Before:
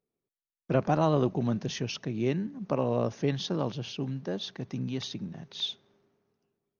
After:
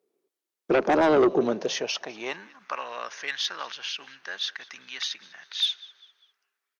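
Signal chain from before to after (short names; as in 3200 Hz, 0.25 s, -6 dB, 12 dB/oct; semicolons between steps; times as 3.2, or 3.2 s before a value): frequency-shifting echo 0.199 s, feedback 38%, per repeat -60 Hz, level -22 dB; high-pass sweep 370 Hz -> 1600 Hz, 1.38–2.8; added harmonics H 5 -9 dB, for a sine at -10 dBFS; gain -2 dB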